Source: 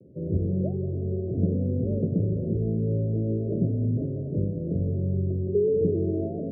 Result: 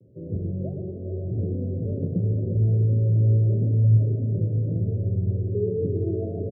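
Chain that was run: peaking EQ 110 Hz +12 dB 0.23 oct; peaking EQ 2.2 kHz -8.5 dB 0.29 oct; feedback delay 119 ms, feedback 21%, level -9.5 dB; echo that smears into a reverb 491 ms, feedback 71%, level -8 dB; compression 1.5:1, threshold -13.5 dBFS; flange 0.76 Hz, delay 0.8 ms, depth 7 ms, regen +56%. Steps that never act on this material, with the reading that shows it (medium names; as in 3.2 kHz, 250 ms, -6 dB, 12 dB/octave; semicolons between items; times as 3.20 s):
peaking EQ 2.2 kHz: input has nothing above 450 Hz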